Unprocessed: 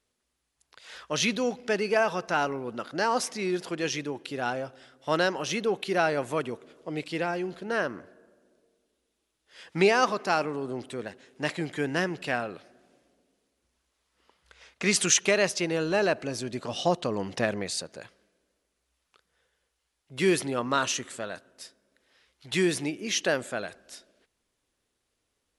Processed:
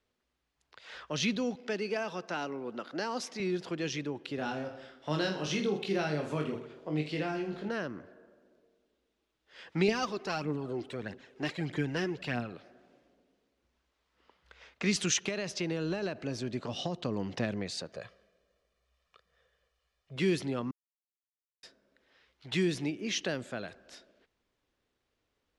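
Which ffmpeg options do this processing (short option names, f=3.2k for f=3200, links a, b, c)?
-filter_complex "[0:a]asettb=1/sr,asplit=3[a][b][c];[a]atrim=end=1.554[d];[b]atrim=start=1.55:end=3.4,asetpts=PTS-STARTPTS,afade=t=in:d=0.004:c=qsin,afade=t=out:st=1.846:d=0.004:c=qsin,highpass=230[e];[c]atrim=start=3.396[f];[d][e]acrossfade=d=0.004:c1=hsin:c2=qsin[g];[g][f]acrossfade=d=0.004:c1=qsin:c2=hsin,asettb=1/sr,asplit=3[h][i][j];[h]atrim=end=4.364[k];[i]atrim=start=4.36:end=7.69,asetpts=PTS-STARTPTS,afade=t=in:d=0.004:c=qsin,afade=t=out:st=3.326:d=0.004:c=qsin,aecho=1:1:20|46|79.8|123.7|180.9|255.1:0.631|0.398|0.251|0.158|0.1|0.0631,atrim=end_sample=146853[l];[j]atrim=start=7.686[m];[k][l]acrossfade=d=0.004:c1=hsin:c2=qsin[n];[n][m]acrossfade=d=0.004:c1=qsin:c2=hsin,asettb=1/sr,asplit=3[o][p][q];[o]atrim=end=9.884[r];[p]atrim=start=9.88:end=12.53,asetpts=PTS-STARTPTS,afade=t=in:d=0.004:c=qsin,afade=t=out:st=2.646:d=0.004:c=qsin,aphaser=in_gain=1:out_gain=1:delay=3:decay=0.5:speed=1.6:type=triangular[s];[q]atrim=start=12.526[t];[r][s]acrossfade=d=0.004:c1=hsin:c2=qsin[u];[u][t]acrossfade=d=0.004:c1=qsin:c2=hsin,asettb=1/sr,asplit=3[v][w][x];[v]atrim=end=15.204[y];[w]atrim=start=15.2:end=16.97,asetpts=PTS-STARTPTS,afade=t=in:d=0.004:c=qsin,afade=t=out:st=1.766:d=0.004:c=qsin,acompressor=threshold=-23dB:ratio=6:attack=3.2:release=140:knee=1:detection=peak[z];[x]atrim=start=16.966[aa];[y][z]acrossfade=d=0.004:c1=hsin:c2=qsin[ab];[ab][aa]acrossfade=d=0.004:c1=qsin:c2=hsin,asettb=1/sr,asplit=3[ac][ad][ae];[ac]atrim=end=17.924[af];[ad]atrim=start=17.92:end=20.16,asetpts=PTS-STARTPTS,afade=t=in:d=0.004:c=qsin,afade=t=out:st=2.236:d=0.004:c=qsin,aecho=1:1:1.7:0.65,atrim=end_sample=98784[ag];[ae]atrim=start=20.156[ah];[af][ag]acrossfade=d=0.004:c1=hsin:c2=qsin[ai];[ai][ah]acrossfade=d=0.004:c1=qsin:c2=hsin,asplit=3[aj][ak][al];[aj]atrim=end=20.71,asetpts=PTS-STARTPTS,afade=t=out:st=20.706:d=0.004:c=hsin[am];[ak]atrim=start=20.71:end=21.63,asetpts=PTS-STARTPTS,volume=0[an];[al]atrim=start=21.63,asetpts=PTS-STARTPTS,afade=t=in:d=0.004:c=hsin[ao];[am][an][ao]concat=n=3:v=0:a=1,highshelf=f=5.5k:g=-6.5,acrossover=split=300|3000[ap][aq][ar];[aq]acompressor=threshold=-40dB:ratio=2.5[as];[ap][as][ar]amix=inputs=3:normalize=0,equalizer=f=10k:t=o:w=0.91:g=-12"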